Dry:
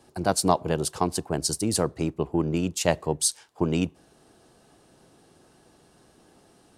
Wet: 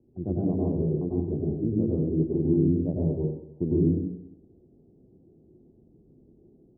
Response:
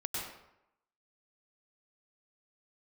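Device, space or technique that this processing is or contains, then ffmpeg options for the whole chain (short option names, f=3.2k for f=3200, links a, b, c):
next room: -filter_complex "[0:a]lowpass=f=390:w=0.5412,lowpass=f=390:w=1.3066[a];[1:a]atrim=start_sample=2205[b];[a][b]afir=irnorm=-1:irlink=0"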